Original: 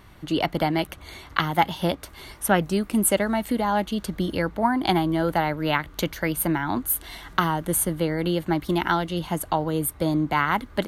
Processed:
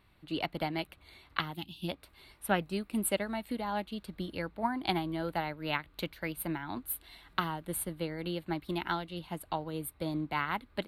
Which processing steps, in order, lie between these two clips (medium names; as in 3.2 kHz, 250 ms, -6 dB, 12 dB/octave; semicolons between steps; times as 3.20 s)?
time-frequency box 1.55–1.89 s, 380–2400 Hz -19 dB; graphic EQ with 31 bands 2.5 kHz +7 dB, 4 kHz +7 dB, 6.3 kHz -12 dB; upward expansion 1.5:1, over -32 dBFS; trim -8.5 dB